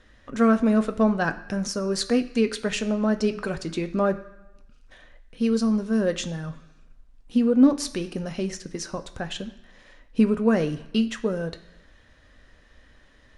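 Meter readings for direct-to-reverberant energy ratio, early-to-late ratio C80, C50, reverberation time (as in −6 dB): 7.5 dB, 17.0 dB, 14.5 dB, 1.0 s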